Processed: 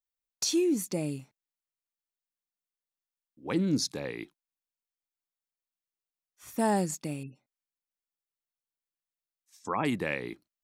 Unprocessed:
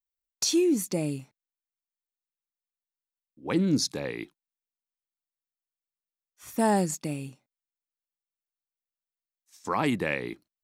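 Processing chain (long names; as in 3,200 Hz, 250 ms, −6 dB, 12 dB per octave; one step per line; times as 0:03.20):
0:07.23–0:09.85: gate on every frequency bin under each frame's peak −25 dB strong
level −3 dB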